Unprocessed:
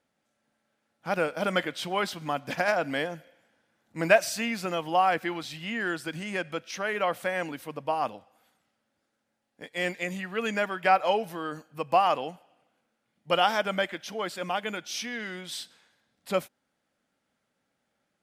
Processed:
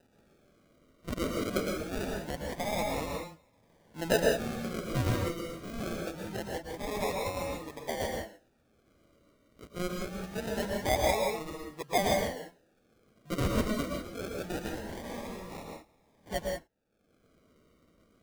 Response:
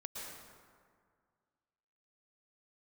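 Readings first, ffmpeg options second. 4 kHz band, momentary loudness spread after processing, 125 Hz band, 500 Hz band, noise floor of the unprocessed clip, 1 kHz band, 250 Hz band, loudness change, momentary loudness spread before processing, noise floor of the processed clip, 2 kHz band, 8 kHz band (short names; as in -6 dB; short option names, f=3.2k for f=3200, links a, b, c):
-5.5 dB, 13 LU, +4.0 dB, -3.5 dB, -79 dBFS, -9.0 dB, 0.0 dB, -5.0 dB, 12 LU, -69 dBFS, -8.5 dB, -0.5 dB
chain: -filter_complex "[0:a]acompressor=mode=upward:threshold=-44dB:ratio=2.5,acrusher=samples=40:mix=1:aa=0.000001:lfo=1:lforange=24:lforate=0.24[a];[1:a]atrim=start_sample=2205,afade=t=out:st=0.25:d=0.01,atrim=end_sample=11466[b];[a][b]afir=irnorm=-1:irlink=0,volume=-1.5dB"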